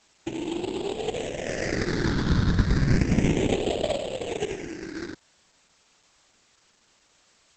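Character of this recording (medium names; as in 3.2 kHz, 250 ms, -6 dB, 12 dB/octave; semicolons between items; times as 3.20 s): aliases and images of a low sample rate 1.2 kHz, jitter 20%; phasing stages 6, 0.32 Hz, lowest notch 670–1600 Hz; a quantiser's noise floor 10-bit, dither triangular; Opus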